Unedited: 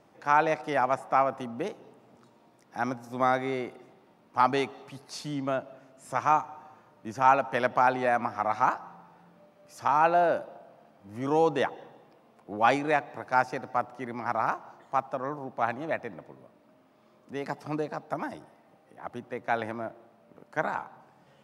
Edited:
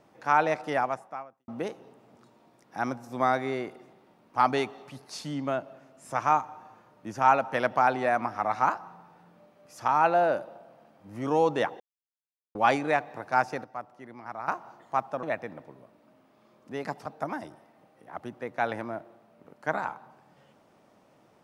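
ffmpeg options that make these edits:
-filter_complex "[0:a]asplit=8[s0][s1][s2][s3][s4][s5][s6][s7];[s0]atrim=end=1.48,asetpts=PTS-STARTPTS,afade=t=out:st=0.76:d=0.72:c=qua[s8];[s1]atrim=start=1.48:end=11.8,asetpts=PTS-STARTPTS,afade=t=in:d=0.004:c=hsin,afade=t=out:st=10.316:d=0.004:c=hsin[s9];[s2]atrim=start=11.8:end=12.55,asetpts=PTS-STARTPTS,volume=0[s10];[s3]atrim=start=12.55:end=13.642,asetpts=PTS-STARTPTS,afade=t=in:d=0.004:c=hsin[s11];[s4]atrim=start=13.638:end=14.482,asetpts=PTS-STARTPTS,volume=0.335[s12];[s5]atrim=start=14.478:end=15.232[s13];[s6]atrim=start=15.838:end=17.672[s14];[s7]atrim=start=17.958[s15];[s8][s9][s10][s11]concat=n=4:v=0:a=1[s16];[s16][s12]acrossfade=d=0.004:c1=hsin:c2=hsin[s17];[s17][s13]acrossfade=d=0.004:c1=hsin:c2=hsin[s18];[s18][s14]acrossfade=d=0.004:c1=hsin:c2=hsin[s19];[s19][s15]acrossfade=d=0.004:c1=hsin:c2=hsin"

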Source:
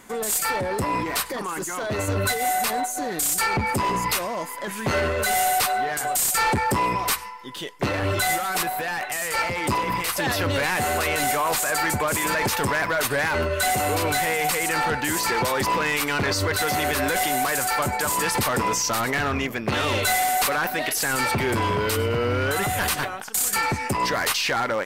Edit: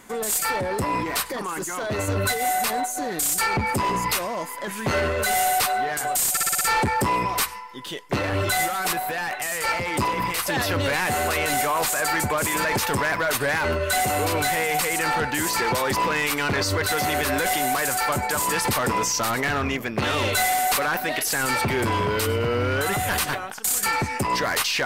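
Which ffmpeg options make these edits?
-filter_complex "[0:a]asplit=6[s0][s1][s2][s3][s4][s5];[s0]atrim=end=6.372[s6];[s1]atrim=start=6.308:end=6.372[s7];[s2]atrim=start=6.308:end=6.372[s8];[s3]atrim=start=6.308:end=6.372[s9];[s4]atrim=start=6.308:end=6.372[s10];[s5]atrim=start=6.308[s11];[s6][s7]acrossfade=d=0.004:c1=hsin:c2=hsin[s12];[s12][s8]acrossfade=d=0.004:c1=hsin:c2=hsin[s13];[s13][s9]acrossfade=d=0.004:c1=hsin:c2=hsin[s14];[s14][s10]acrossfade=d=0.004:c1=hsin:c2=hsin[s15];[s15][s11]acrossfade=d=0.004:c1=hsin:c2=hsin"

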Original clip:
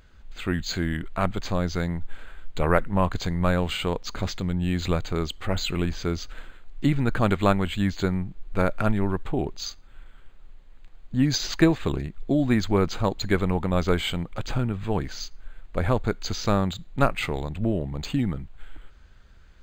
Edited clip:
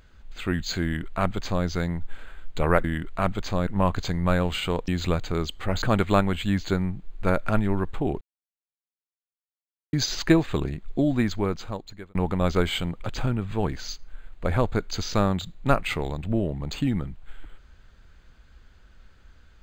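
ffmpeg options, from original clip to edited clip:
-filter_complex "[0:a]asplit=8[s0][s1][s2][s3][s4][s5][s6][s7];[s0]atrim=end=2.842[s8];[s1]atrim=start=0.828:end=1.662[s9];[s2]atrim=start=2.838:end=4.052[s10];[s3]atrim=start=4.688:end=5.632[s11];[s4]atrim=start=7.138:end=9.53,asetpts=PTS-STARTPTS,afade=t=out:st=2.388:d=0.004:c=hsin[s12];[s5]atrim=start=9.53:end=11.25,asetpts=PTS-STARTPTS,volume=0[s13];[s6]atrim=start=11.25:end=13.47,asetpts=PTS-STARTPTS,afade=t=in:d=0.004:c=hsin,afade=t=out:st=1.07:d=1.15[s14];[s7]atrim=start=13.47,asetpts=PTS-STARTPTS,afade=t=in:d=0.004:c=hsin[s15];[s8][s9]acrossfade=d=0.004:c1=hsin:c2=hsin[s16];[s16][s10]acrossfade=d=0.004:c1=hsin:c2=hsin[s17];[s17][s11]acrossfade=d=0.004:c1=hsin:c2=hsin[s18];[s12][s13][s14][s15]concat=n=4:v=0:a=1[s19];[s18][s19]acrossfade=d=0.004:c1=hsin:c2=hsin"

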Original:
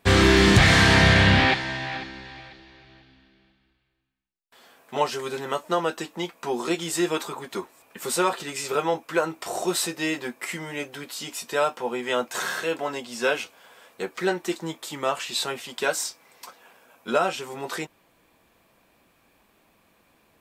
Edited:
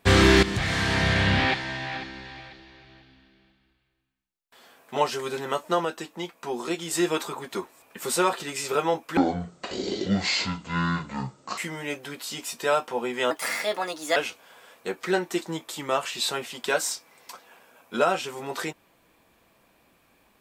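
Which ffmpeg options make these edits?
-filter_complex "[0:a]asplit=8[s0][s1][s2][s3][s4][s5][s6][s7];[s0]atrim=end=0.43,asetpts=PTS-STARTPTS,afade=t=out:st=0.426:d=0.004:c=hsin:silence=0.199526[s8];[s1]atrim=start=0.43:end=5.852,asetpts=PTS-STARTPTS,afade=t=in:d=1.82:silence=0.199526[s9];[s2]atrim=start=5.848:end=6.912,asetpts=PTS-STARTPTS,volume=0.668[s10];[s3]atrim=start=6.908:end=9.174[s11];[s4]atrim=start=9.17:end=10.47,asetpts=PTS-STARTPTS,asetrate=23814,aresample=44100[s12];[s5]atrim=start=10.466:end=12.204[s13];[s6]atrim=start=12.2:end=13.3,asetpts=PTS-STARTPTS,asetrate=56889,aresample=44100[s14];[s7]atrim=start=13.296[s15];[s8][s9]concat=n=2:v=0:a=1[s16];[s16][s10]acrossfade=d=0.004:c1=hsin:c2=hsin[s17];[s17][s11]acrossfade=d=0.004:c1=hsin:c2=hsin[s18];[s18][s12]acrossfade=d=0.004:c1=hsin:c2=hsin[s19];[s19][s13]acrossfade=d=0.004:c1=hsin:c2=hsin[s20];[s20][s14]acrossfade=d=0.004:c1=hsin:c2=hsin[s21];[s21][s15]acrossfade=d=0.004:c1=hsin:c2=hsin"

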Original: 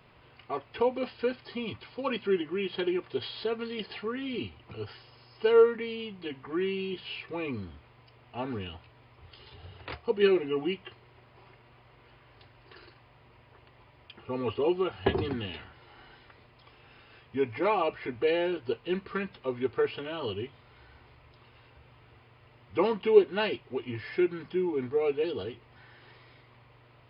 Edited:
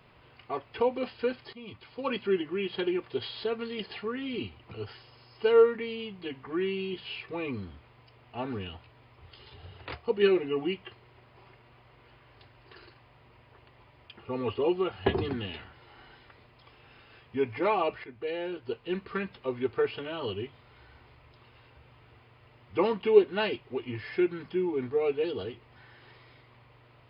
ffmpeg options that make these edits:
-filter_complex "[0:a]asplit=3[s0][s1][s2];[s0]atrim=end=1.53,asetpts=PTS-STARTPTS,afade=t=out:st=1.526:d=0.004:c=hsin:silence=0.188365[s3];[s1]atrim=start=1.53:end=18.04,asetpts=PTS-STARTPTS,afade=t=in:d=0.56:silence=0.188365,afade=t=out:st=16.506:d=0.004:c=hsin:silence=0.251189[s4];[s2]atrim=start=18.04,asetpts=PTS-STARTPTS,afade=t=in:d=1.14:silence=0.251189[s5];[s3][s4][s5]concat=n=3:v=0:a=1"

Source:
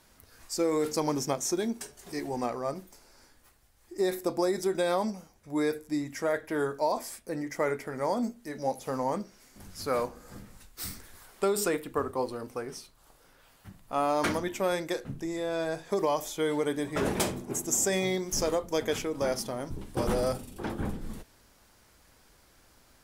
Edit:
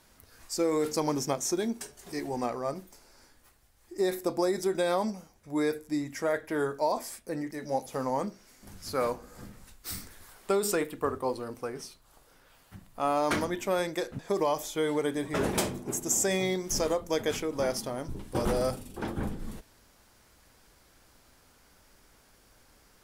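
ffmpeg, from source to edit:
-filter_complex "[0:a]asplit=3[s0][s1][s2];[s0]atrim=end=7.512[s3];[s1]atrim=start=8.438:end=15.122[s4];[s2]atrim=start=15.808[s5];[s3][s4]acrossfade=d=0.004:c1=hsin:c2=hsin[s6];[s6][s5]acrossfade=d=0.004:c1=hsin:c2=hsin"

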